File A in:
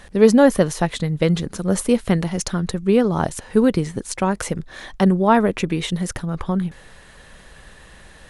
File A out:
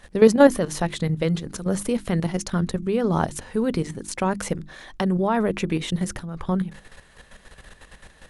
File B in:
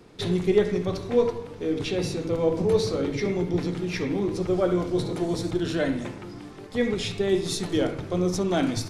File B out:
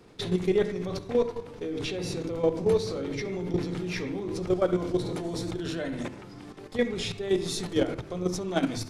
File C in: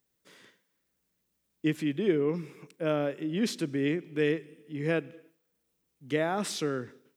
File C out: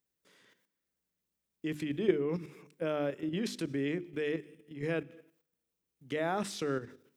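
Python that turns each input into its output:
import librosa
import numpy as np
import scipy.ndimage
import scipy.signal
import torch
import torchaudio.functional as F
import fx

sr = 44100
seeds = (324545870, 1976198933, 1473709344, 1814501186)

y = fx.level_steps(x, sr, step_db=11)
y = fx.hum_notches(y, sr, base_hz=50, count=7)
y = F.gain(torch.from_numpy(y), 1.5).numpy()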